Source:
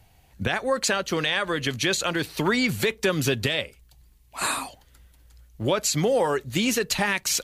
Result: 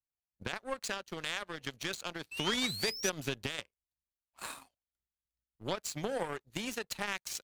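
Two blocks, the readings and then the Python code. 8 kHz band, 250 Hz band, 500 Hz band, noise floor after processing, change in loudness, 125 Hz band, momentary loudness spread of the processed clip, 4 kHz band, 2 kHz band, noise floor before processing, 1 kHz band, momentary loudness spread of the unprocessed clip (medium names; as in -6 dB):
-12.5 dB, -14.5 dB, -14.5 dB, under -85 dBFS, -12.5 dB, -15.5 dB, 13 LU, -9.5 dB, -12.5 dB, -57 dBFS, -12.5 dB, 7 LU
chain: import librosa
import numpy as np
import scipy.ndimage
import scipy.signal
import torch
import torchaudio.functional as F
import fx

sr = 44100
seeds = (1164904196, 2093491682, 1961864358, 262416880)

y = fx.spec_paint(x, sr, seeds[0], shape='rise', start_s=2.31, length_s=0.79, low_hz=2600.0, high_hz=6100.0, level_db=-24.0)
y = fx.power_curve(y, sr, exponent=2.0)
y = y * librosa.db_to_amplitude(-5.0)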